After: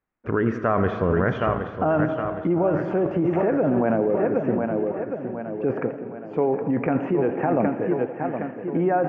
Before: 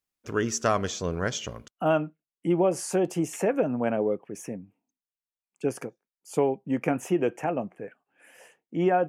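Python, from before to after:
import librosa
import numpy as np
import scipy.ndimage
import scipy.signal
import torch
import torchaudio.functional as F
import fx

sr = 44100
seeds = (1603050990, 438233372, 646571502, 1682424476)

p1 = scipy.signal.sosfilt(scipy.signal.butter(4, 1900.0, 'lowpass', fs=sr, output='sos'), x)
p2 = p1 + fx.echo_feedback(p1, sr, ms=766, feedback_pct=49, wet_db=-10.0, dry=0)
p3 = fx.rev_schroeder(p2, sr, rt60_s=3.5, comb_ms=28, drr_db=14.5)
p4 = fx.over_compress(p3, sr, threshold_db=-29.0, ratio=-0.5)
p5 = p3 + (p4 * 10.0 ** (3.0 / 20.0))
y = fx.echo_warbled(p5, sr, ms=84, feedback_pct=50, rate_hz=2.8, cents=180, wet_db=-15.0)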